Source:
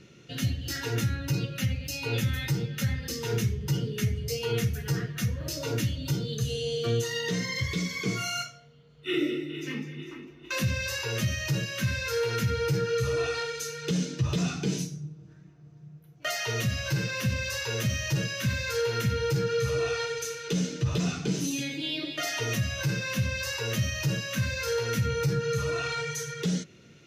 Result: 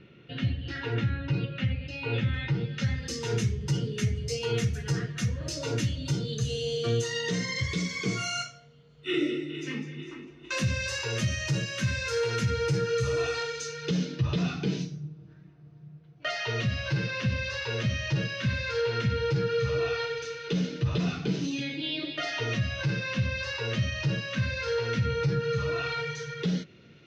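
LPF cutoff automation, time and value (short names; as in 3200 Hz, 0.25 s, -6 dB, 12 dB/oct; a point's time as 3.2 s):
LPF 24 dB/oct
2.54 s 3400 Hz
3.11 s 8600 Hz
13.27 s 8600 Hz
14.18 s 4600 Hz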